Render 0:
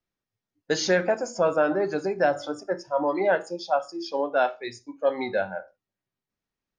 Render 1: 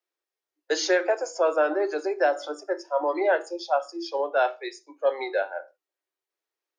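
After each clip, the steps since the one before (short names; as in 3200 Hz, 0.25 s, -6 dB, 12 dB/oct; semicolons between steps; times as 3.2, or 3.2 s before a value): steep high-pass 310 Hz 96 dB/oct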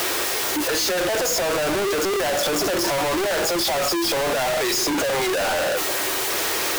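infinite clipping; gain +5.5 dB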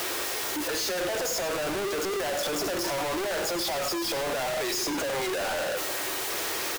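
echo 99 ms -12.5 dB; gain -7.5 dB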